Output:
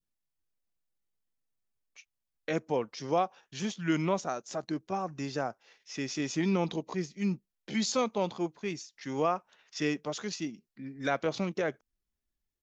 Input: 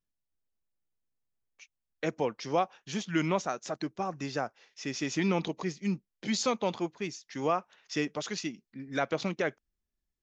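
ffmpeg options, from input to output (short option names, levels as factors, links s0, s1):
-af "atempo=0.81,adynamicequalizer=threshold=0.00398:dfrequency=2100:dqfactor=0.86:tfrequency=2100:tqfactor=0.86:attack=5:release=100:ratio=0.375:range=3:mode=cutabove:tftype=bell"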